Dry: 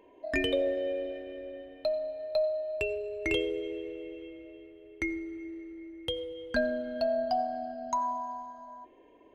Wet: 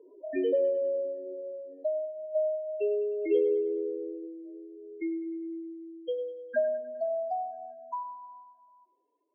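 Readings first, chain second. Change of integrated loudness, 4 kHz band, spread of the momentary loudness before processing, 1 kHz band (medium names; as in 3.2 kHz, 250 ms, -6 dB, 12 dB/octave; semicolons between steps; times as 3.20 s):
+1.0 dB, under -15 dB, 16 LU, -4.0 dB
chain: spectral contrast enhancement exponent 2.8; band-pass sweep 430 Hz -> 4.2 kHz, 5.61–9.21 s; two-band feedback delay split 420 Hz, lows 239 ms, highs 102 ms, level -15.5 dB; trim +6.5 dB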